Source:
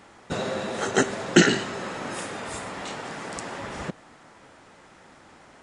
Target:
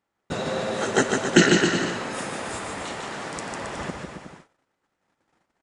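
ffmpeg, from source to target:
-af "aecho=1:1:150|270|366|442.8|504.2:0.631|0.398|0.251|0.158|0.1,agate=range=-29dB:threshold=-45dB:ratio=16:detection=peak"

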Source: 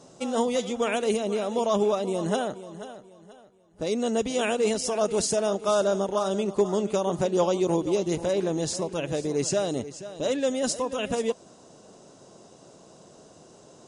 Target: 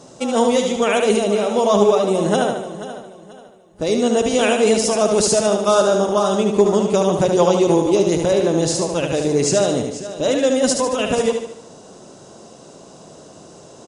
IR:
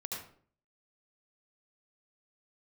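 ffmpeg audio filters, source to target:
-af "aecho=1:1:74|148|222|296|370|444:0.531|0.255|0.122|0.0587|0.0282|0.0135,volume=8dB"

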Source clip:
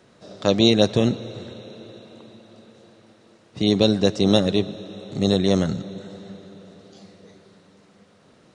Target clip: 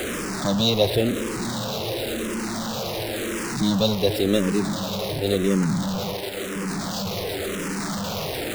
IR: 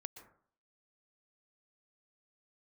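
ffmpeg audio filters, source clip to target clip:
-filter_complex "[0:a]aeval=exprs='val(0)+0.5*0.141*sgn(val(0))':c=same,asettb=1/sr,asplit=3[a][b][c];[a]atrim=end=6.144[d];[b]atrim=start=6.14:end=6.56,asetpts=PTS-STARTPTS,afade=t=in:d=0.004:c=qsin,afade=t=out:st=0.416:d=0.004:c=qsin,lowshelf=f=180:g=-10[e];[c]atrim=start=6.556[f];[d][e]acrossfade=d=0.004:c1=hsin:c2=qsin[g];[g][f]acrossfade=d=0.004:c1=qsin:c2=hsin,asplit=2[h][i];[i]afreqshift=-0.94[j];[h][j]amix=inputs=2:normalize=1,volume=-2.5dB"

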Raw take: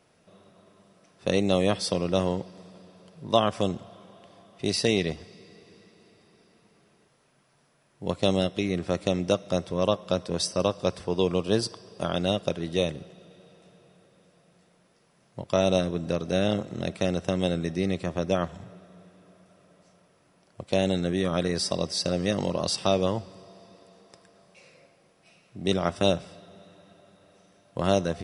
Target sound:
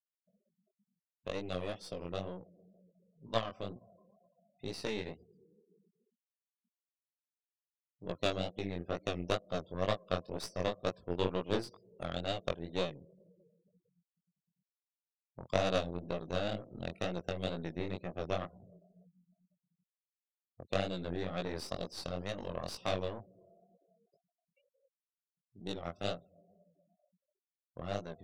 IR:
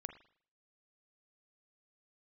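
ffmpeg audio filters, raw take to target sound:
-filter_complex "[0:a]afftfilt=real='re*gte(hypot(re,im),0.0112)':imag='im*gte(hypot(re,im),0.0112)':win_size=1024:overlap=0.75,dynaudnorm=f=930:g=13:m=4.5dB,aeval=exprs='0.631*(cos(1*acos(clip(val(0)/0.631,-1,1)))-cos(1*PI/2))+0.126*(cos(3*acos(clip(val(0)/0.631,-1,1)))-cos(3*PI/2))+0.0708*(cos(4*acos(clip(val(0)/0.631,-1,1)))-cos(4*PI/2))+0.0112*(cos(7*acos(clip(val(0)/0.631,-1,1)))-cos(7*PI/2))':c=same,asplit=2[a][b];[b]acompressor=threshold=-39dB:ratio=12,volume=-2.5dB[c];[a][c]amix=inputs=2:normalize=0,bass=f=250:g=-2,treble=f=4k:g=-6,flanger=delay=16.5:depth=7.3:speed=2.1,volume=-4.5dB"

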